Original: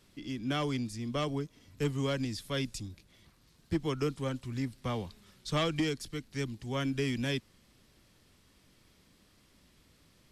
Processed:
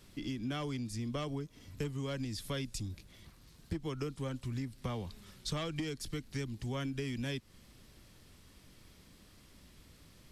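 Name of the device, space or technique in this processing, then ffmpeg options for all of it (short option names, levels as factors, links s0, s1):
ASMR close-microphone chain: -af "lowshelf=f=110:g=6,acompressor=threshold=0.0126:ratio=6,highshelf=f=9900:g=3.5,volume=1.41"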